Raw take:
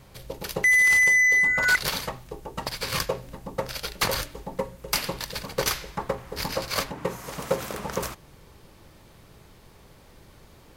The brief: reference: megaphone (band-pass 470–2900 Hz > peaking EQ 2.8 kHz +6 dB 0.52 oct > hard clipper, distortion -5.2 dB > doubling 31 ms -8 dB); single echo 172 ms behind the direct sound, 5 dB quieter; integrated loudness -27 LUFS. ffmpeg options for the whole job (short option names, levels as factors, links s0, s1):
-filter_complex "[0:a]highpass=470,lowpass=2900,equalizer=f=2800:t=o:w=0.52:g=6,aecho=1:1:172:0.562,asoftclip=type=hard:threshold=0.0668,asplit=2[s0][s1];[s1]adelay=31,volume=0.398[s2];[s0][s2]amix=inputs=2:normalize=0"